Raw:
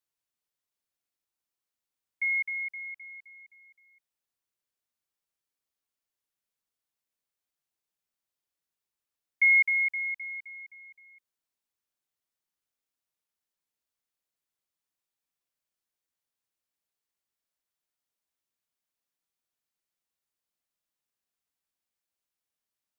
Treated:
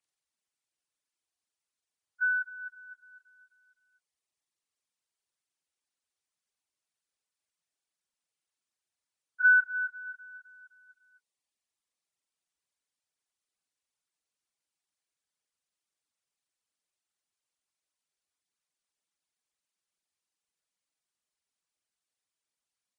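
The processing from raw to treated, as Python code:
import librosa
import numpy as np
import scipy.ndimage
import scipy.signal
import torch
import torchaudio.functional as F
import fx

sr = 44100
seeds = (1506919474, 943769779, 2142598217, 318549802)

y = fx.partial_stretch(x, sr, pct=83)
y = fx.dereverb_blind(y, sr, rt60_s=1.2)
y = F.gain(torch.from_numpy(y), 2.5).numpy()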